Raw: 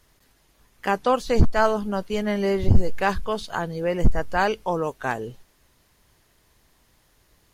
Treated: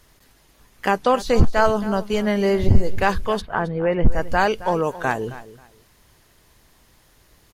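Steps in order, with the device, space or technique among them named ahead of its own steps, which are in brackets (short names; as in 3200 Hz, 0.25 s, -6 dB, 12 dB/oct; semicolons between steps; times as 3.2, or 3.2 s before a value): parallel compression (in parallel at -1 dB: compressor, threshold -24 dBFS, peak gain reduction 15 dB); 3.4–4.1 on the sum: LPF 2000 Hz -> 3100 Hz 24 dB/oct; feedback echo 0.269 s, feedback 21%, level -16 dB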